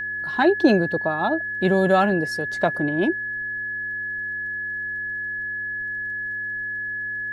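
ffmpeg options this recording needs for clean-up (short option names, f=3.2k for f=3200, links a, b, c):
-af "adeclick=t=4,bandreject=f=99.8:t=h:w=4,bandreject=f=199.6:t=h:w=4,bandreject=f=299.4:t=h:w=4,bandreject=f=399.2:t=h:w=4,bandreject=f=1.7k:w=30,agate=range=-21dB:threshold=-21dB"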